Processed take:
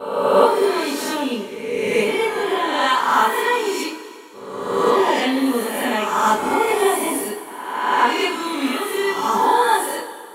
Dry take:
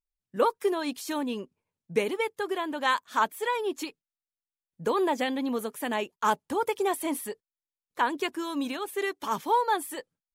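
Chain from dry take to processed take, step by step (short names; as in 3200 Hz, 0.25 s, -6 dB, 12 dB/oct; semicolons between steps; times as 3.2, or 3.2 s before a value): spectral swells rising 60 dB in 1.31 s; gate with hold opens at -35 dBFS; two-slope reverb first 0.31 s, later 2.4 s, from -18 dB, DRR -8 dB; gain -2.5 dB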